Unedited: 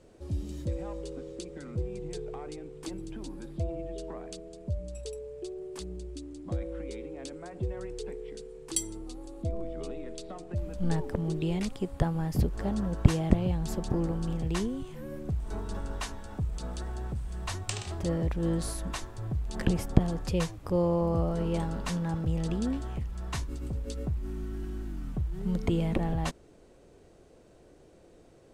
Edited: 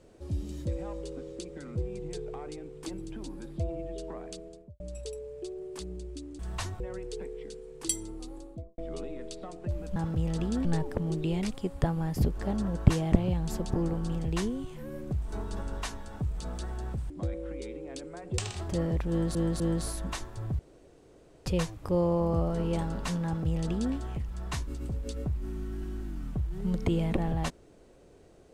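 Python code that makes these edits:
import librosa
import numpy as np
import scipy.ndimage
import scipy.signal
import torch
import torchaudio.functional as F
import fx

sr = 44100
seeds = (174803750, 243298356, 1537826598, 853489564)

y = fx.studio_fade_out(x, sr, start_s=4.43, length_s=0.37)
y = fx.studio_fade_out(y, sr, start_s=9.2, length_s=0.45)
y = fx.edit(y, sr, fx.swap(start_s=6.39, length_s=1.28, other_s=17.28, other_length_s=0.41),
    fx.repeat(start_s=18.41, length_s=0.25, count=3),
    fx.room_tone_fill(start_s=19.4, length_s=0.87),
    fx.duplicate(start_s=22.06, length_s=0.69, to_s=10.83), tone=tone)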